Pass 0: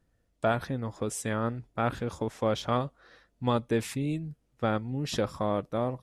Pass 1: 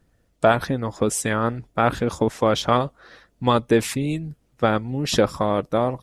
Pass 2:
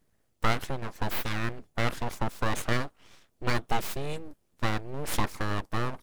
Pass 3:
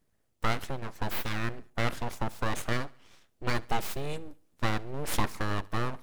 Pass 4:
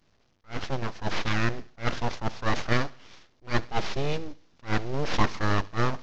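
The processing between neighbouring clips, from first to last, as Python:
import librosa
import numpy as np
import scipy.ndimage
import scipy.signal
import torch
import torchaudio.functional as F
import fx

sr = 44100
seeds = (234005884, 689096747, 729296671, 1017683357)

y1 = fx.hpss(x, sr, part='percussive', gain_db=6)
y1 = y1 * librosa.db_to_amplitude(5.5)
y2 = fx.high_shelf(y1, sr, hz=7700.0, db=8.0)
y2 = np.abs(y2)
y2 = y2 * librosa.db_to_amplitude(-6.5)
y3 = fx.echo_feedback(y2, sr, ms=70, feedback_pct=45, wet_db=-23)
y3 = fx.rider(y3, sr, range_db=10, speed_s=2.0)
y3 = y3 * librosa.db_to_amplitude(-1.5)
y4 = fx.cvsd(y3, sr, bps=32000)
y4 = fx.attack_slew(y4, sr, db_per_s=280.0)
y4 = y4 * librosa.db_to_amplitude(7.0)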